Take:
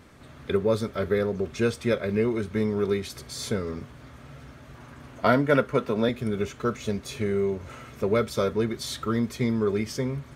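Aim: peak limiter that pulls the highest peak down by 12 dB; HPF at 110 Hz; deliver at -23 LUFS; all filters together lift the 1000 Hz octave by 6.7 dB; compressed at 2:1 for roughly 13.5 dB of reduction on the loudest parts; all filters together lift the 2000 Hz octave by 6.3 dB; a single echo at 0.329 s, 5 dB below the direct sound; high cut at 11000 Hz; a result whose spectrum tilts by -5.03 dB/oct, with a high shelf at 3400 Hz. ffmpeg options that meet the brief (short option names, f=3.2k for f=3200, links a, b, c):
-af "highpass=110,lowpass=11k,equalizer=f=1k:t=o:g=7.5,equalizer=f=2k:t=o:g=6.5,highshelf=f=3.4k:g=-4.5,acompressor=threshold=-37dB:ratio=2,alimiter=level_in=3.5dB:limit=-24dB:level=0:latency=1,volume=-3.5dB,aecho=1:1:329:0.562,volume=14dB"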